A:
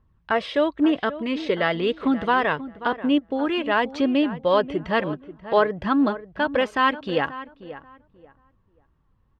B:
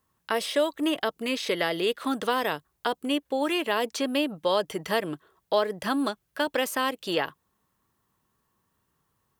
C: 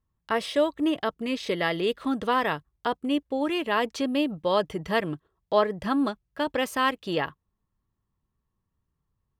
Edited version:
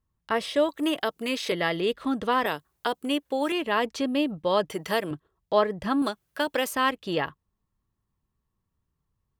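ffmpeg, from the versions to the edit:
-filter_complex "[1:a]asplit=4[s0][s1][s2][s3];[2:a]asplit=5[s4][s5][s6][s7][s8];[s4]atrim=end=0.692[s9];[s0]atrim=start=0.688:end=1.522[s10];[s5]atrim=start=1.518:end=2.462[s11];[s1]atrim=start=2.458:end=3.522[s12];[s6]atrim=start=3.518:end=4.702[s13];[s2]atrim=start=4.698:end=5.112[s14];[s7]atrim=start=5.108:end=6.022[s15];[s3]atrim=start=6.018:end=6.732[s16];[s8]atrim=start=6.728[s17];[s9][s10]acrossfade=d=0.004:c1=hsin:c2=hsin[s18];[s18][s11]acrossfade=d=0.004:c1=hsin:c2=hsin[s19];[s19][s12]acrossfade=d=0.004:c1=hsin:c2=hsin[s20];[s20][s13]acrossfade=d=0.004:c1=hsin:c2=hsin[s21];[s21][s14]acrossfade=d=0.004:c1=hsin:c2=hsin[s22];[s22][s15]acrossfade=d=0.004:c1=hsin:c2=hsin[s23];[s23][s16]acrossfade=d=0.004:c1=hsin:c2=hsin[s24];[s24][s17]acrossfade=d=0.004:c1=hsin:c2=hsin"

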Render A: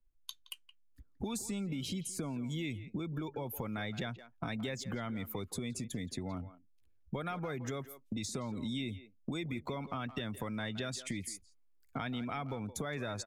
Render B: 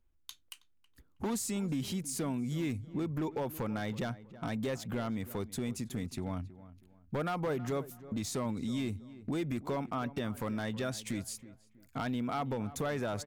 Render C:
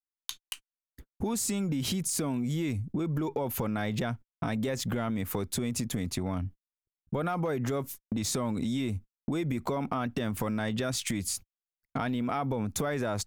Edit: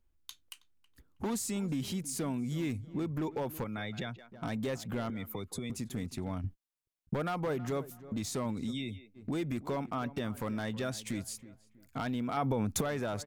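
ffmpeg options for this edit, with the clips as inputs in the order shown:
-filter_complex "[0:a]asplit=3[s0][s1][s2];[2:a]asplit=2[s3][s4];[1:a]asplit=6[s5][s6][s7][s8][s9][s10];[s5]atrim=end=3.642[s11];[s0]atrim=start=3.638:end=4.322[s12];[s6]atrim=start=4.318:end=5.102[s13];[s1]atrim=start=5.098:end=5.702[s14];[s7]atrim=start=5.698:end=6.442[s15];[s3]atrim=start=6.438:end=7.142[s16];[s8]atrim=start=7.138:end=8.74[s17];[s2]atrim=start=8.7:end=9.18[s18];[s9]atrim=start=9.14:end=12.372[s19];[s4]atrim=start=12.368:end=12.812[s20];[s10]atrim=start=12.808[s21];[s11][s12]acrossfade=d=0.004:c1=hsin:c2=hsin[s22];[s22][s13]acrossfade=d=0.004:c1=hsin:c2=hsin[s23];[s23][s14]acrossfade=d=0.004:c1=hsin:c2=hsin[s24];[s24][s15]acrossfade=d=0.004:c1=hsin:c2=hsin[s25];[s25][s16]acrossfade=d=0.004:c1=hsin:c2=hsin[s26];[s26][s17]acrossfade=d=0.004:c1=hsin:c2=hsin[s27];[s27][s18]acrossfade=d=0.04:c1=tri:c2=tri[s28];[s28][s19]acrossfade=d=0.04:c1=tri:c2=tri[s29];[s29][s20]acrossfade=d=0.004:c1=hsin:c2=hsin[s30];[s30][s21]acrossfade=d=0.004:c1=hsin:c2=hsin"

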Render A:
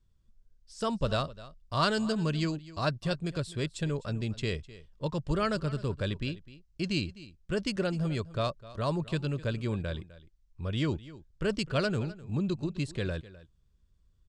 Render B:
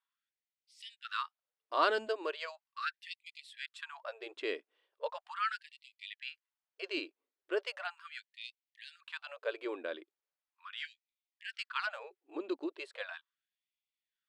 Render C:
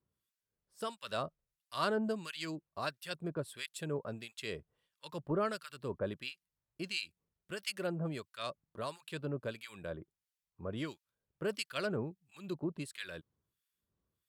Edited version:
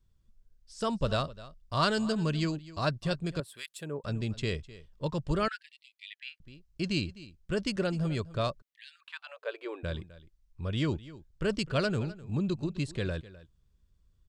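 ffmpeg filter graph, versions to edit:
-filter_complex "[1:a]asplit=2[s0][s1];[0:a]asplit=4[s2][s3][s4][s5];[s2]atrim=end=3.402[s6];[2:a]atrim=start=3.398:end=4.042[s7];[s3]atrim=start=4.038:end=5.482[s8];[s0]atrim=start=5.478:end=6.402[s9];[s4]atrim=start=6.398:end=8.622[s10];[s1]atrim=start=8.618:end=9.832[s11];[s5]atrim=start=9.828[s12];[s6][s7]acrossfade=d=0.004:c1=hsin:c2=hsin[s13];[s13][s8]acrossfade=d=0.004:c1=hsin:c2=hsin[s14];[s14][s9]acrossfade=d=0.004:c1=hsin:c2=hsin[s15];[s15][s10]acrossfade=d=0.004:c1=hsin:c2=hsin[s16];[s16][s11]acrossfade=d=0.004:c1=hsin:c2=hsin[s17];[s17][s12]acrossfade=d=0.004:c1=hsin:c2=hsin"

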